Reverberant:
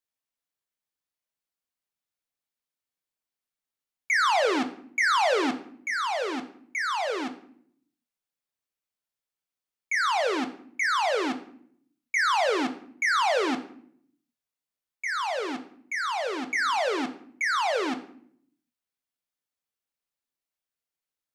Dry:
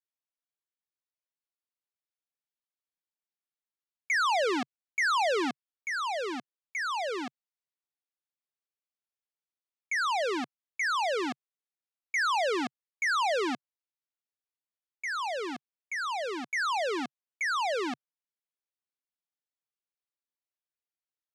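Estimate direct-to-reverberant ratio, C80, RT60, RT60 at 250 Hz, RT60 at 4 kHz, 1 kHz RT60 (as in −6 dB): 7.0 dB, 16.0 dB, 0.60 s, 0.95 s, 0.45 s, 0.55 s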